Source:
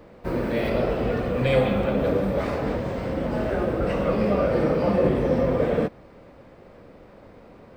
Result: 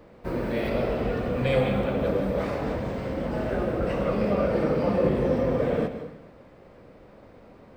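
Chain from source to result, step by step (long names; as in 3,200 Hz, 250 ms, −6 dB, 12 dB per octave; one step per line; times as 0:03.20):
dense smooth reverb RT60 0.89 s, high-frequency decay 0.9×, pre-delay 115 ms, DRR 9 dB
level −3 dB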